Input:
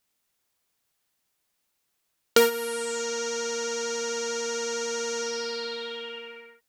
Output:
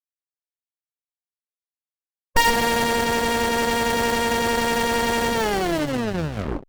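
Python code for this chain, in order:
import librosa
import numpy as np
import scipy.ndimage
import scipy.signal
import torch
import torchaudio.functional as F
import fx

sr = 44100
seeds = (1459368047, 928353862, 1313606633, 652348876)

y = fx.tape_stop_end(x, sr, length_s=1.34)
y = fx.fuzz(y, sr, gain_db=33.0, gate_db=-39.0)
y = fx.formant_shift(y, sr, semitones=3)
y = fx.running_max(y, sr, window=33)
y = F.gain(torch.from_numpy(y), -2.5).numpy()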